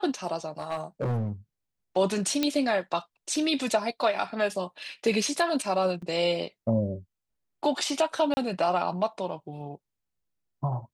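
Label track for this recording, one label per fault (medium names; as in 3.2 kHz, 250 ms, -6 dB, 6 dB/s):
0.600000	1.310000	clipped -25 dBFS
2.430000	2.430000	pop -11 dBFS
6.020000	6.020000	dropout 4.8 ms
8.340000	8.370000	dropout 30 ms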